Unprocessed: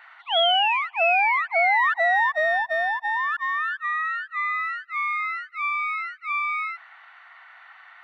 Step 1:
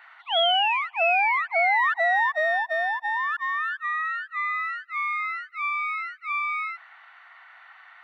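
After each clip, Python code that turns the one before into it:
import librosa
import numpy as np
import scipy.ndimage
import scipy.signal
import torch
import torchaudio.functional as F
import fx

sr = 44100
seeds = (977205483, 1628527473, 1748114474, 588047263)

y = scipy.signal.sosfilt(scipy.signal.butter(4, 250.0, 'highpass', fs=sr, output='sos'), x)
y = y * librosa.db_to_amplitude(-1.5)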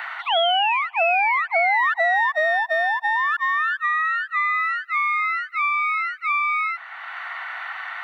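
y = fx.band_squash(x, sr, depth_pct=70)
y = y * librosa.db_to_amplitude(3.5)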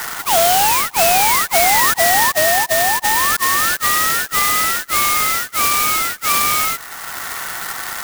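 y = fx.clock_jitter(x, sr, seeds[0], jitter_ms=0.089)
y = y * librosa.db_to_amplitude(6.0)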